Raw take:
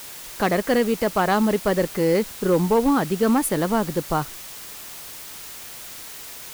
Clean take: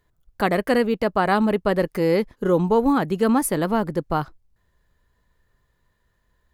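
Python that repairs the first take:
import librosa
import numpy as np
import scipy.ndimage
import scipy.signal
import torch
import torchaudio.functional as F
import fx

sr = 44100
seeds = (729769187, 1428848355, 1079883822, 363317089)

y = fx.fix_declip(x, sr, threshold_db=-11.5)
y = fx.noise_reduce(y, sr, print_start_s=5.53, print_end_s=6.03, reduce_db=30.0)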